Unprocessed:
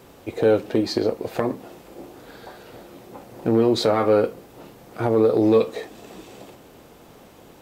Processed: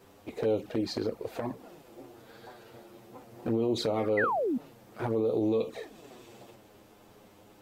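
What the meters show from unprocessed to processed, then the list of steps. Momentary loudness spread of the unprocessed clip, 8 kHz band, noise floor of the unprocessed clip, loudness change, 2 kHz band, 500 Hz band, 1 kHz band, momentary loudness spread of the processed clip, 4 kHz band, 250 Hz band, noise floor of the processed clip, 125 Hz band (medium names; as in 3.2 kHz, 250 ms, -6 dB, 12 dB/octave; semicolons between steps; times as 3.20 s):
12 LU, -8.5 dB, -49 dBFS, -9.5 dB, -2.0 dB, -10.0 dB, -6.5 dB, 21 LU, -9.0 dB, -9.0 dB, -57 dBFS, -8.5 dB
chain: touch-sensitive flanger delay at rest 11 ms, full sweep at -15 dBFS; peak limiter -14.5 dBFS, peak gain reduction 6.5 dB; painted sound fall, 4.17–4.58 s, 220–2100 Hz -23 dBFS; trim -5.5 dB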